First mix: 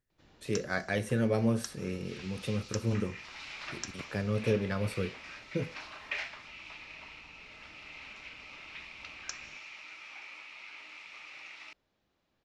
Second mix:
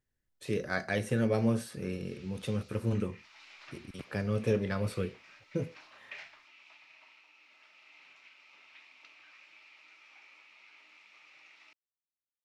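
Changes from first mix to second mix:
first sound: muted
second sound −10.0 dB
reverb: off

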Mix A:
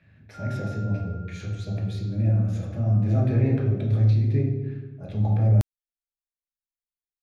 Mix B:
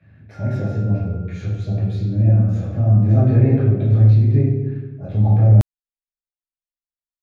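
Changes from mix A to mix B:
speech: send +7.5 dB
master: add high-shelf EQ 3,100 Hz −9 dB

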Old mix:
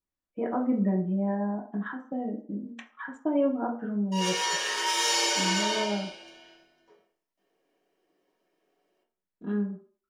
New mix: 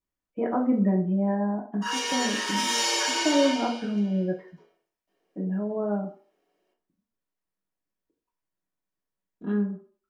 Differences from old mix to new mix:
speech +3.0 dB
background: entry −2.30 s

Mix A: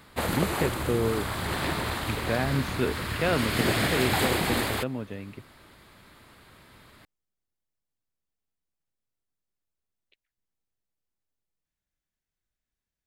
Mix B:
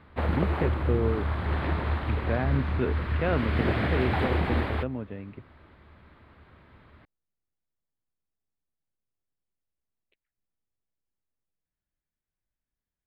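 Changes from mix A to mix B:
background: add parametric band 76 Hz +14 dB 0.21 octaves
master: add high-frequency loss of the air 460 metres

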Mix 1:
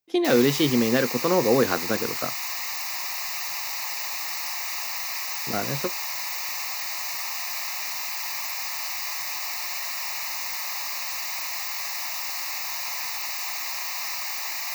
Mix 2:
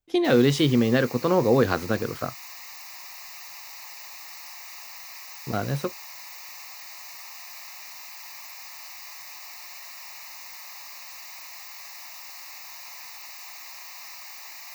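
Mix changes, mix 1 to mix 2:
speech: remove high-pass filter 170 Hz 12 dB per octave
background −11.0 dB

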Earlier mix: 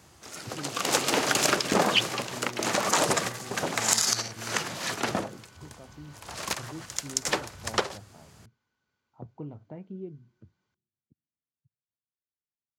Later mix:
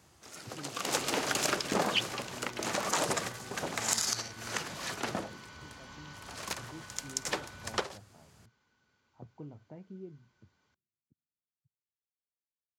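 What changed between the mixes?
speech −6.5 dB
first sound −6.5 dB
second sound +7.0 dB

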